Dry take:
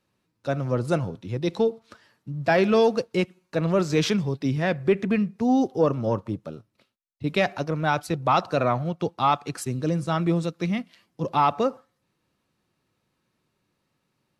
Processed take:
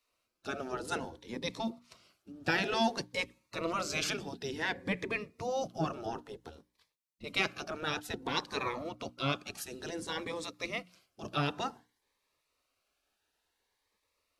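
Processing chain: spectral gate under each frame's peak -10 dB weak; notches 60/120/180/240/300 Hz; cascading phaser rising 0.56 Hz

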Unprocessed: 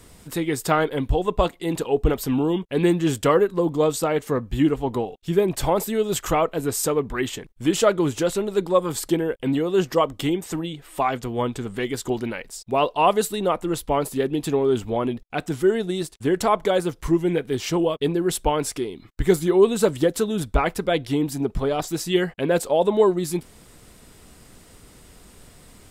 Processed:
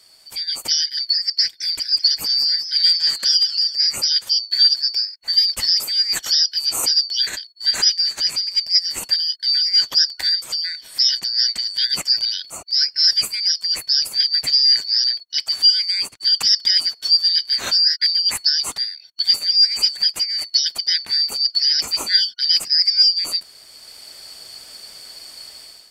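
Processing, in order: four-band scrambler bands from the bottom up 4321; AGC gain up to 12 dB; 1.41–3.75 warbling echo 0.194 s, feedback 37%, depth 144 cents, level -11.5 dB; gain -3 dB

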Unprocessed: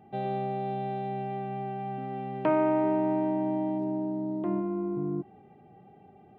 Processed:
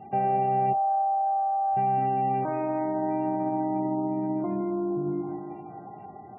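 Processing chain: 2.31–2.95 negative-ratio compressor -28 dBFS, ratio -0.5; 3.97–4.59 air absorption 150 m; split-band echo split 780 Hz, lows 0.16 s, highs 0.637 s, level -12 dB; limiter -29 dBFS, peak gain reduction 11 dB; 0.73–1.77 elliptic band-pass 600–1400 Hz, stop band 50 dB; bell 770 Hz +8.5 dB 0.23 oct; gain +7 dB; MP3 8 kbps 12000 Hz

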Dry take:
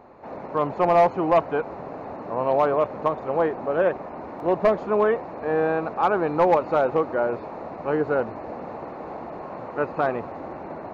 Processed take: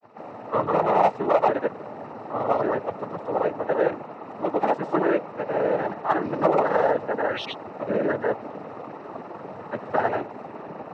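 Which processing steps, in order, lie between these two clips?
painted sound rise, 7.1–7.52, 580–3800 Hz -32 dBFS; grains, pitch spread up and down by 0 st; noise vocoder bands 12

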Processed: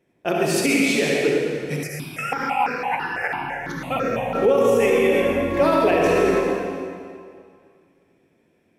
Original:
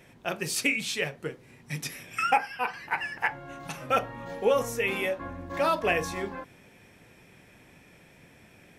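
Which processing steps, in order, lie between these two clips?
gate with hold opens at -42 dBFS; bell 340 Hz +12 dB 1.8 oct; reverb RT60 2.2 s, pre-delay 58 ms, DRR -3 dB; maximiser +10 dB; 1.83–4.35 step phaser 6 Hz 970–3100 Hz; gain -8 dB

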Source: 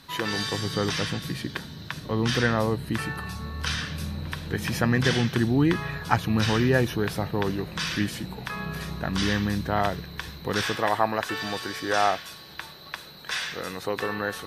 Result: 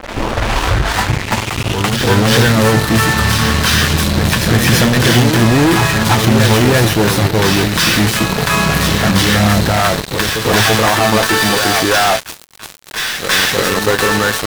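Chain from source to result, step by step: tape start at the beginning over 2.39 s; in parallel at -2.5 dB: compressor 16:1, threshold -34 dBFS, peak gain reduction 19.5 dB; on the sum: resonator 110 Hz, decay 0.16 s, harmonics all, mix 70%; fuzz box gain 41 dB, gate -38 dBFS; reverse echo 0.335 s -5 dB; crossover distortion -33.5 dBFS; attack slew limiter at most 270 dB/s; gain +5 dB

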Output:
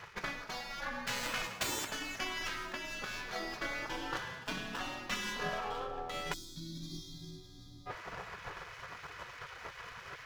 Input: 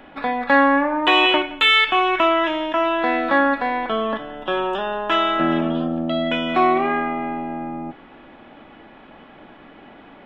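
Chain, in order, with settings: median filter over 15 samples; reverse; compressor 4:1, threshold -34 dBFS, peak gain reduction 19 dB; reverse; high shelf 4600 Hz -5.5 dB; split-band echo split 330 Hz, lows 0.664 s, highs 0.105 s, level -15 dB; on a send at -13 dB: reverb RT60 0.25 s, pre-delay 3 ms; on the sum: spectral gate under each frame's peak -15 dB weak; transient shaper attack +5 dB, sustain +1 dB; spectral gain 6.33–7.86, 380–3200 Hz -29 dB; gain +8 dB

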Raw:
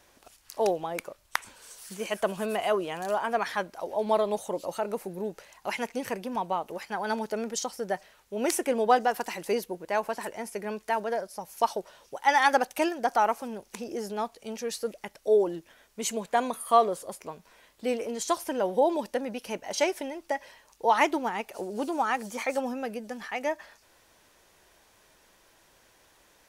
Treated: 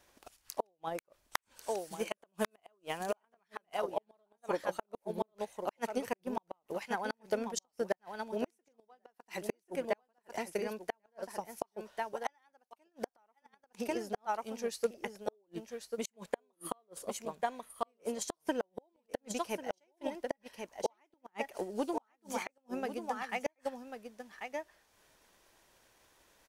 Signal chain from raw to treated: echo 1.092 s -7.5 dB; flipped gate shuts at -19 dBFS, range -37 dB; transient shaper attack +7 dB, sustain -4 dB; gain -6.5 dB

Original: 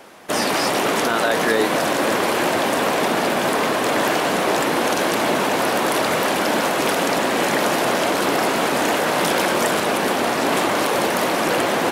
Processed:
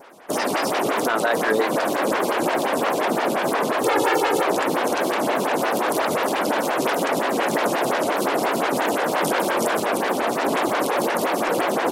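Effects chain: 3.84–4.43 comb 2.3 ms, depth 90%; vibrato 3.2 Hz 51 cents; photocell phaser 5.7 Hz

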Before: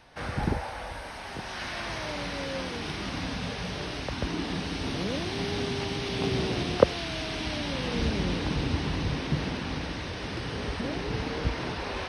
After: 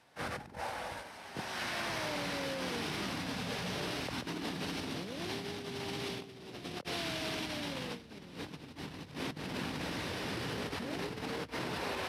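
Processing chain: CVSD 64 kbps; negative-ratio compressor -34 dBFS, ratio -1; gate -35 dBFS, range -7 dB; HPF 120 Hz 12 dB/oct; gain -4.5 dB

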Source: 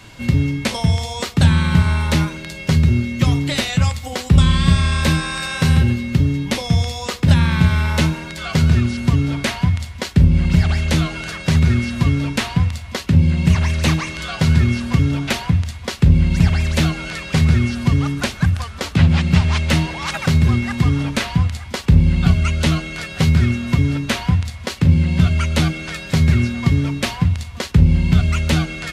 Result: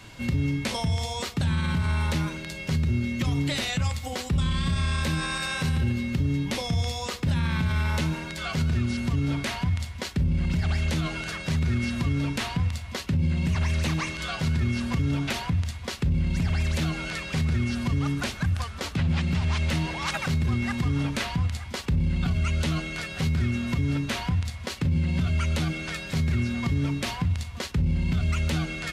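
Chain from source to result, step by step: limiter -13 dBFS, peak gain reduction 11 dB; gain -4.5 dB

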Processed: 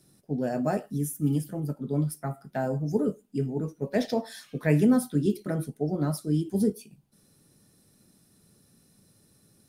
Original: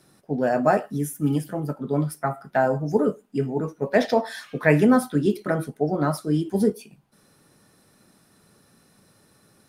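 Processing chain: bell 1200 Hz -13 dB 2.9 oct

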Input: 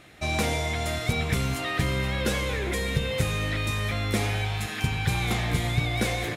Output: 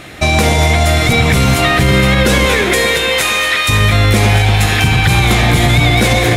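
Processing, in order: 2.45–3.68 HPF 280 Hz -> 1100 Hz 12 dB/oct; echo with dull and thin repeats by turns 0.116 s, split 1200 Hz, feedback 77%, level -8.5 dB; maximiser +19.5 dB; gain -1 dB

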